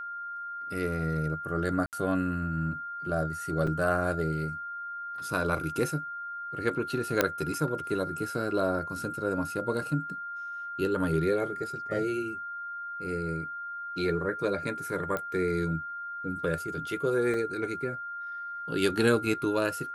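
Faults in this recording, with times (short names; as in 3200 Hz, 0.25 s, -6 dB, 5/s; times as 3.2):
tone 1400 Hz -35 dBFS
1.86–1.93 gap 68 ms
3.67 gap 4.4 ms
7.21 pop -7 dBFS
15.17 pop -18 dBFS
17.34 gap 2.2 ms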